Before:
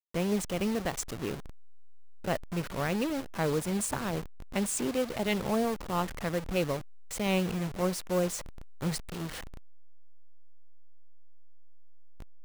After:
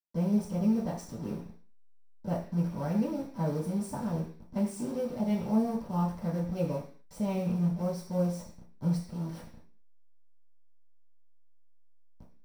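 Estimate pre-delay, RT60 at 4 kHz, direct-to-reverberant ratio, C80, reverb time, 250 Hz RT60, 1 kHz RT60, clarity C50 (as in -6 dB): 3 ms, no reading, -8.5 dB, 12.0 dB, 0.45 s, 0.55 s, 0.45 s, 7.5 dB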